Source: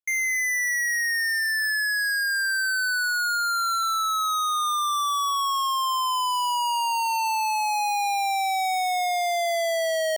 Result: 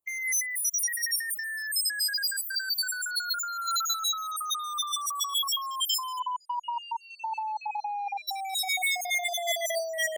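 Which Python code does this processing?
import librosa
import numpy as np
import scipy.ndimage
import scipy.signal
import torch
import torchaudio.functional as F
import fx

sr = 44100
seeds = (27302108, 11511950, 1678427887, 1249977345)

y = fx.spec_dropout(x, sr, seeds[0], share_pct=45)
y = fx.lowpass(y, sr, hz=1000.0, slope=12, at=(6.18, 8.27), fade=0.02)
y = fx.over_compress(y, sr, threshold_db=-34.0, ratio=-1.0)
y = F.gain(torch.from_numpy(y), 3.0).numpy()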